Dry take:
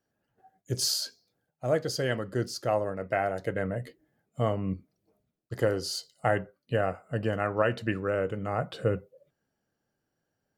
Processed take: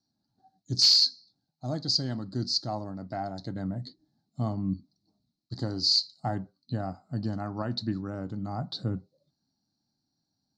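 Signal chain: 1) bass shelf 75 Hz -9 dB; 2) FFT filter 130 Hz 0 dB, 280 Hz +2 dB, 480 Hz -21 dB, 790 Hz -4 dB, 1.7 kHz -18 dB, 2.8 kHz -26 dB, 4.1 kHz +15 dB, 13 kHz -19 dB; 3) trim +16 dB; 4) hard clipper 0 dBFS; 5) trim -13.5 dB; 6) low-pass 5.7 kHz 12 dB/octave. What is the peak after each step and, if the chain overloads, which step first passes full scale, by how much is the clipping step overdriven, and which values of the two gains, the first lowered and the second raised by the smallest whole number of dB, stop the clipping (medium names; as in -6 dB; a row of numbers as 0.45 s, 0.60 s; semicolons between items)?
-11.5 dBFS, -6.5 dBFS, +9.5 dBFS, 0.0 dBFS, -13.5 dBFS, -13.0 dBFS; step 3, 9.5 dB; step 3 +6 dB, step 5 -3.5 dB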